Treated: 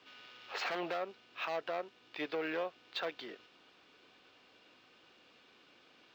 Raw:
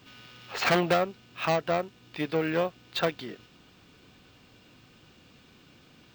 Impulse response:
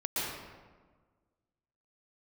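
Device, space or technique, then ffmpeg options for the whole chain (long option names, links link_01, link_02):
DJ mixer with the lows and highs turned down: -filter_complex "[0:a]acrossover=split=320 5700:gain=0.0891 1 0.126[link_01][link_02][link_03];[link_01][link_02][link_03]amix=inputs=3:normalize=0,alimiter=level_in=0.5dB:limit=-24dB:level=0:latency=1:release=66,volume=-0.5dB,volume=-3.5dB"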